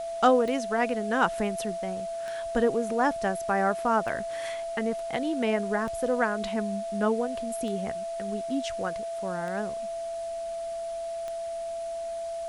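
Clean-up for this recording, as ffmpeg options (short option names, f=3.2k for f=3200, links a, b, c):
-af "adeclick=t=4,bandreject=f=670:w=30,afwtdn=0.0032"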